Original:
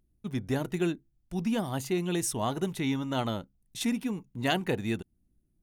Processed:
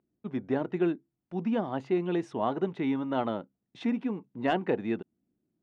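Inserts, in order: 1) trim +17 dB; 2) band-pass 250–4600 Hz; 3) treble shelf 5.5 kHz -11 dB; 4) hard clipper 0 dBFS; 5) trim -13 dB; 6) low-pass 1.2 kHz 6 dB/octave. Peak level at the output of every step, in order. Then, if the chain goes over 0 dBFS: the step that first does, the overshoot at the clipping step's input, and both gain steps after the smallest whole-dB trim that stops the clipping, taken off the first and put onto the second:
+4.0 dBFS, +5.5 dBFS, +4.0 dBFS, 0.0 dBFS, -13.0 dBFS, -15.0 dBFS; step 1, 4.0 dB; step 1 +13 dB, step 5 -9 dB

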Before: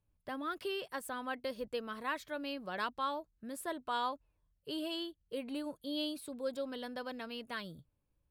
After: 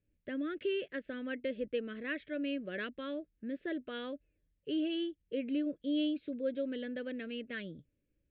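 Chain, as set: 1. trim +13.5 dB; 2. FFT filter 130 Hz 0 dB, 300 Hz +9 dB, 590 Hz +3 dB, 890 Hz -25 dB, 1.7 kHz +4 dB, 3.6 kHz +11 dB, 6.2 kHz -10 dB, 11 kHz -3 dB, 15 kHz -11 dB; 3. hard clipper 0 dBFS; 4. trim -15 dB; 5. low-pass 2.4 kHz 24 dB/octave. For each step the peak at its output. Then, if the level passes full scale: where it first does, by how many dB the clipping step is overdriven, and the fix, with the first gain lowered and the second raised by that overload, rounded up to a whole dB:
-10.0 dBFS, -3.5 dBFS, -3.5 dBFS, -18.5 dBFS, -23.5 dBFS; nothing clips

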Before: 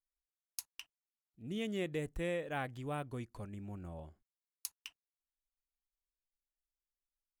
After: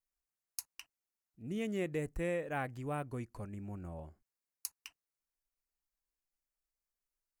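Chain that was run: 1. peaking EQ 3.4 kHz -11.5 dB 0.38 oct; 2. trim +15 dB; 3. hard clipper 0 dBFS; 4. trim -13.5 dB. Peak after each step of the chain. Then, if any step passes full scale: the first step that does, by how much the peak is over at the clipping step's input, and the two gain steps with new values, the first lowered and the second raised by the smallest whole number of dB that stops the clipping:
-21.0 dBFS, -6.0 dBFS, -6.0 dBFS, -19.5 dBFS; nothing clips

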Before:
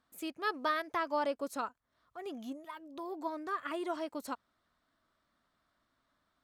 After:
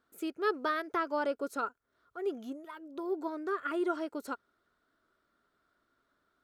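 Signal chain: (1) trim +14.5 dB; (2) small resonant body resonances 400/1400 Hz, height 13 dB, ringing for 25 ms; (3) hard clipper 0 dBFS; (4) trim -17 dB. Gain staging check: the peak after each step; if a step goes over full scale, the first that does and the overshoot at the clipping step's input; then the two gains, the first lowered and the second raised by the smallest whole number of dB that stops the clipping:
-7.0 dBFS, -2.5 dBFS, -2.5 dBFS, -19.5 dBFS; nothing clips

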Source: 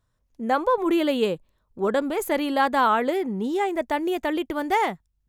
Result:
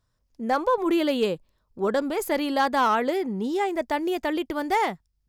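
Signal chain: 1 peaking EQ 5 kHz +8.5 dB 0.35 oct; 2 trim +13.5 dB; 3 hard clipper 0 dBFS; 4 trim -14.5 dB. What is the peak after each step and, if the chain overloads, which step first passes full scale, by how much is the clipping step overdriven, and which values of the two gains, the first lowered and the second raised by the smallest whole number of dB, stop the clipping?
-9.5 dBFS, +4.0 dBFS, 0.0 dBFS, -14.5 dBFS; step 2, 4.0 dB; step 2 +9.5 dB, step 4 -10.5 dB

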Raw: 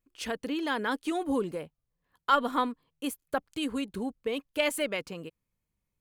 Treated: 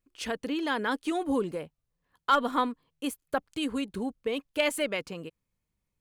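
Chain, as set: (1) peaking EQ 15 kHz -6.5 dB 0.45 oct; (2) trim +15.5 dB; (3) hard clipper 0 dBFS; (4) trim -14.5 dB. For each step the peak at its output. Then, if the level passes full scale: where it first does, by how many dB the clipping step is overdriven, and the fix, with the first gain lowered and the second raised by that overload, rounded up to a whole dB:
-9.5 dBFS, +6.0 dBFS, 0.0 dBFS, -14.5 dBFS; step 2, 6.0 dB; step 2 +9.5 dB, step 4 -8.5 dB

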